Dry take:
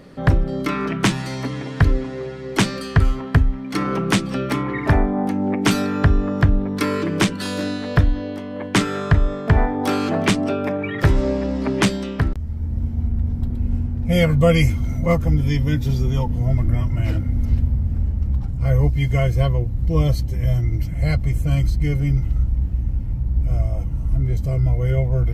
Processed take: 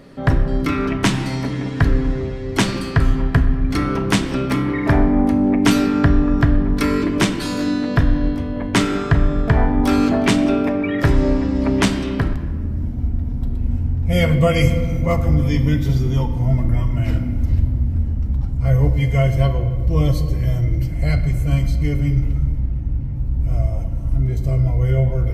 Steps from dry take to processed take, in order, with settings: 22.60–23.16 s: low-pass 3.6 kHz 6 dB/octave; on a send: reverberation RT60 2.0 s, pre-delay 3 ms, DRR 6 dB

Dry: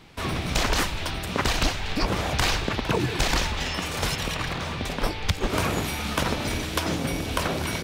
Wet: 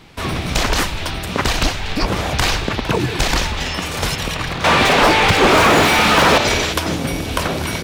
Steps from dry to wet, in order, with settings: 6.34–6.73 s: time-frequency box 360–7900 Hz +8 dB; 4.64–6.38 s: overdrive pedal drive 34 dB, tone 1.8 kHz, clips at -8.5 dBFS; trim +6 dB

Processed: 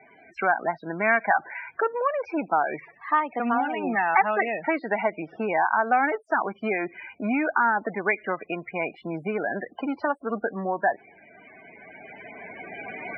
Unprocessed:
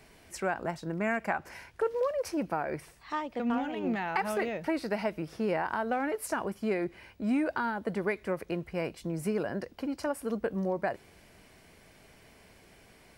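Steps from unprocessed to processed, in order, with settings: recorder AGC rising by 8.7 dB/s; loudest bins only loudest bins 32; cabinet simulation 320–2800 Hz, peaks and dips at 360 Hz -4 dB, 520 Hz -8 dB, 760 Hz +5 dB, 1.2 kHz +5 dB, 1.7 kHz +4 dB, 2.4 kHz +6 dB; trim +7.5 dB

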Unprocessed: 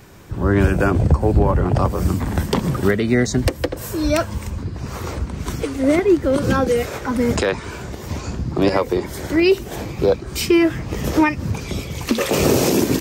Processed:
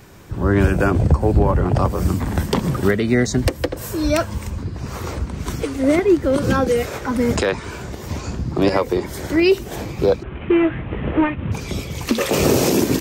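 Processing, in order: 10.23–11.52 s: CVSD coder 16 kbps

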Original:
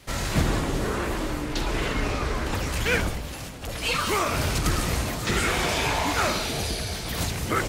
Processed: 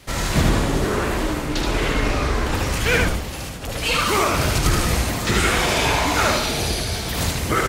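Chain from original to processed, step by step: delay 76 ms -3.5 dB; trim +4 dB

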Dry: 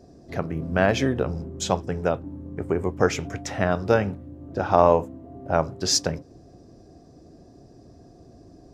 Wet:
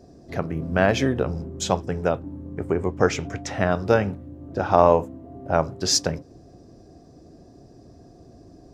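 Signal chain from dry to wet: 2.74–3.57 s: low-pass 8.6 kHz 12 dB/octave; trim +1 dB

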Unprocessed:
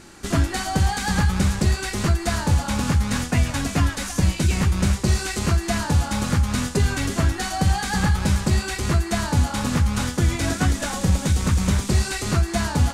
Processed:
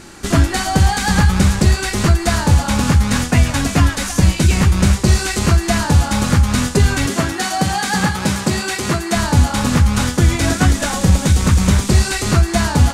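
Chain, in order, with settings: 7.06–9.16 s: high-pass 160 Hz 12 dB/octave; trim +7 dB

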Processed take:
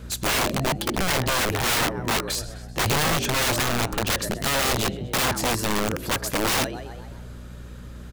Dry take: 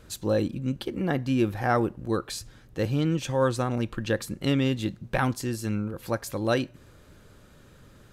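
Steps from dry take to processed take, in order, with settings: frequency-shifting echo 128 ms, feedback 53%, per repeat +74 Hz, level -17 dB; integer overflow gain 25 dB; mains buzz 60 Hz, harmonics 4, -47 dBFS -6 dB/octave; trim +7.5 dB

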